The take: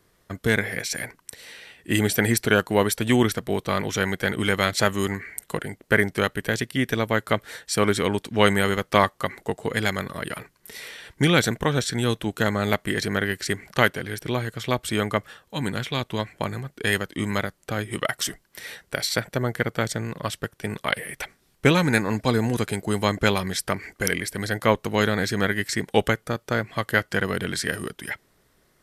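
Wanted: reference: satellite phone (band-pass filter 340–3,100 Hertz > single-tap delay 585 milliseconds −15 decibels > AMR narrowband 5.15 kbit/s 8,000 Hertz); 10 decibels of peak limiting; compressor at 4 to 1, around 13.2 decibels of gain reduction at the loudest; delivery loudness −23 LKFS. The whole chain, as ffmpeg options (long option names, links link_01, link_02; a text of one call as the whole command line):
ffmpeg -i in.wav -af "acompressor=threshold=-29dB:ratio=4,alimiter=limit=-21.5dB:level=0:latency=1,highpass=340,lowpass=3100,aecho=1:1:585:0.178,volume=17.5dB" -ar 8000 -c:a libopencore_amrnb -b:a 5150 out.amr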